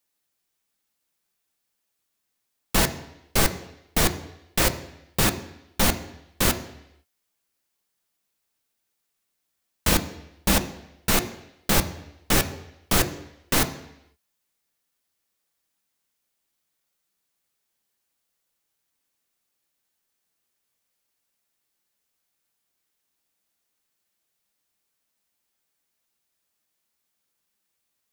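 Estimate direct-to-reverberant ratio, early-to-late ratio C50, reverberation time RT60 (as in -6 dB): 7.0 dB, 13.0 dB, 0.80 s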